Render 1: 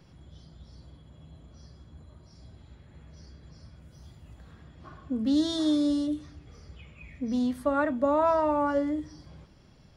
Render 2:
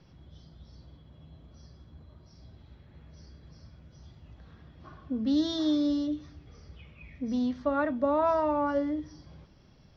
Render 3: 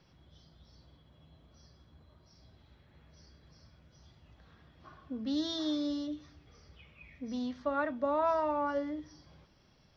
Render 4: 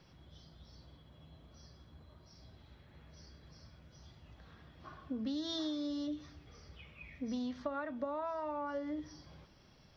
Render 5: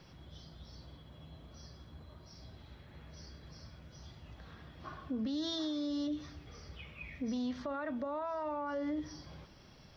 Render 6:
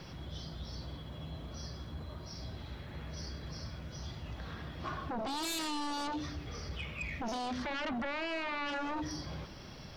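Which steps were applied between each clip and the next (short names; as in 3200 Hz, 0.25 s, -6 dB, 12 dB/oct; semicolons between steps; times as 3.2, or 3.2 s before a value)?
Chebyshev low-pass 5900 Hz, order 5; gain -1.5 dB
low shelf 460 Hz -8 dB; gain -1.5 dB
compressor 16:1, threshold -37 dBFS, peak gain reduction 13.5 dB; gain +2.5 dB
limiter -35 dBFS, peak gain reduction 10 dB; gain +5 dB
sine folder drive 9 dB, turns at -29.5 dBFS; gain -3.5 dB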